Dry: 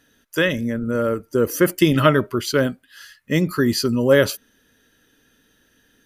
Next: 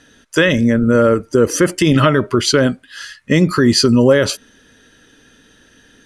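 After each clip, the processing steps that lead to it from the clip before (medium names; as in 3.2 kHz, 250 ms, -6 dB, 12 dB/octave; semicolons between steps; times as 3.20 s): low-pass 9.2 kHz 24 dB/octave; compression 4:1, threshold -18 dBFS, peak gain reduction 8 dB; loudness maximiser +12 dB; trim -1 dB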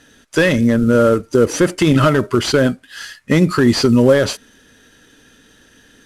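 CVSD coder 64 kbps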